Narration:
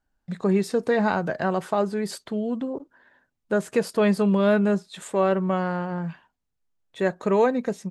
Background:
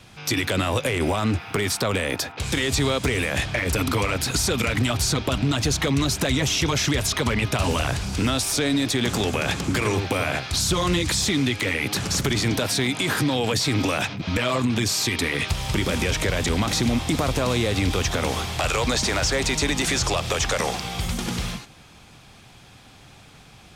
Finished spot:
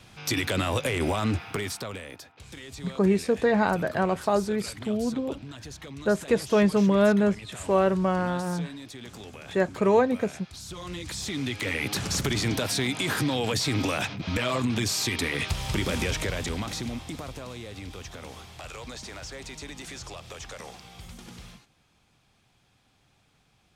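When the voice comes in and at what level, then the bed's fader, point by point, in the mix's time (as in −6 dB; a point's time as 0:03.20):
2.55 s, −0.5 dB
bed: 0:01.42 −3.5 dB
0:02.24 −19.5 dB
0:10.58 −19.5 dB
0:11.77 −4 dB
0:16.03 −4 dB
0:17.54 −17.5 dB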